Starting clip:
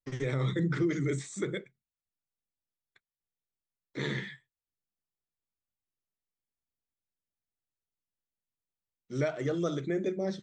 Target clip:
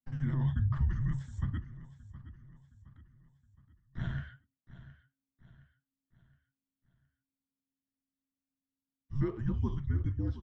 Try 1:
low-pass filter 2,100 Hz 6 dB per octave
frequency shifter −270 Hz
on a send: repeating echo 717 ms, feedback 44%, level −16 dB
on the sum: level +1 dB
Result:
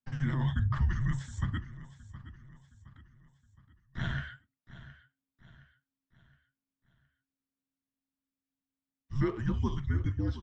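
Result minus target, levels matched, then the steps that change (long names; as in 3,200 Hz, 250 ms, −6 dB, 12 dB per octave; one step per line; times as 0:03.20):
2,000 Hz band +7.5 dB
change: low-pass filter 530 Hz 6 dB per octave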